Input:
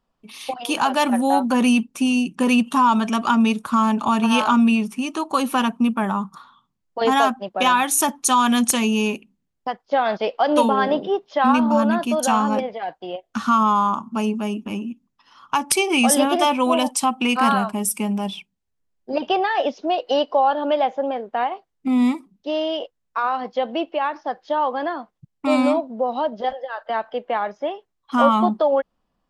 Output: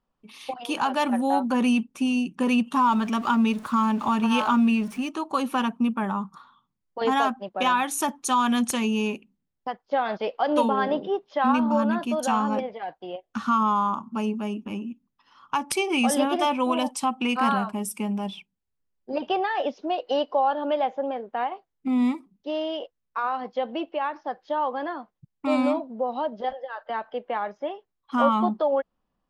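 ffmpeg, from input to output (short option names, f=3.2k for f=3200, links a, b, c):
-filter_complex "[0:a]asettb=1/sr,asplit=3[a][b][c];[a]atrim=end=2.754[d];[b]atrim=start=2.75:end=5.09,asetpts=PTS-STARTPTS,afade=t=in:d=0.004:c=qsin,afade=t=out:st=2.336:d=0.004:c=qsin,aeval=exprs='val(0)+0.5*0.0211*sgn(val(0))':c=same[e];[c]atrim=start=5.086[f];[d][e]acrossfade=d=0.004:c1=hsin:c2=qsin[g];[g][f]acrossfade=d=0.004:c1=qsin:c2=hsin,highshelf=f=4.9k:g=-7.5,bandreject=f=670:w=17,volume=-4.5dB"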